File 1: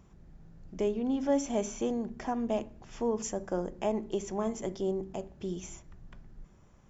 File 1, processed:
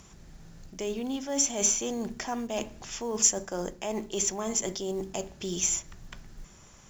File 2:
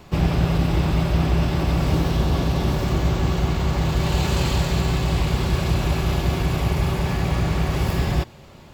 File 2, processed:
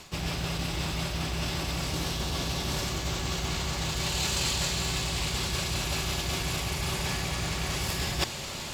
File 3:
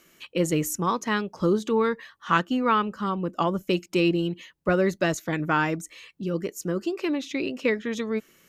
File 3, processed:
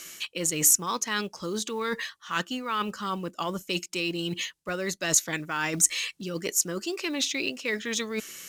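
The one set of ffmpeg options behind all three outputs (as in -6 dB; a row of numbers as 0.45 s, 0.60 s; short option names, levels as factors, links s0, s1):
-af "lowpass=8700,lowshelf=f=500:g=-3.5,areverse,acompressor=threshold=0.0158:ratio=12,areverse,crystalizer=i=6:c=0,acrusher=bits=7:mode=log:mix=0:aa=0.000001,volume=2.11"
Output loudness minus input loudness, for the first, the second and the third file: +4.0 LU, -8.0 LU, -1.5 LU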